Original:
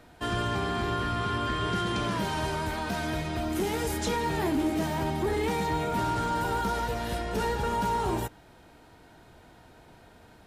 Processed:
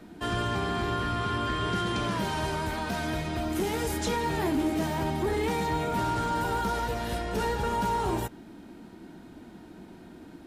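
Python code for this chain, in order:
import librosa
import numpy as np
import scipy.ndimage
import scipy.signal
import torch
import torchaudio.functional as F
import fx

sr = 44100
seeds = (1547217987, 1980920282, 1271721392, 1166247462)

y = fx.dmg_noise_band(x, sr, seeds[0], low_hz=170.0, high_hz=360.0, level_db=-48.0)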